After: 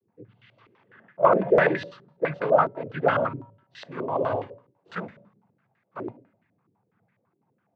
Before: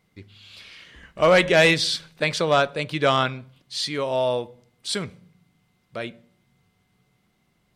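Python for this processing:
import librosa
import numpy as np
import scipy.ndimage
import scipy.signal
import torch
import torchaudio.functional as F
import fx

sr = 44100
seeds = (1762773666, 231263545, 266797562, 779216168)

y = fx.envelope_flatten(x, sr, power=0.6, at=(3.82, 6.06), fade=0.02)
y = fx.noise_vocoder(y, sr, seeds[0], bands=16)
y = fx.comb_fb(y, sr, f0_hz=190.0, decay_s=0.75, harmonics='odd', damping=0.0, mix_pct=50)
y = fx.filter_held_lowpass(y, sr, hz=12.0, low_hz=370.0, high_hz=1800.0)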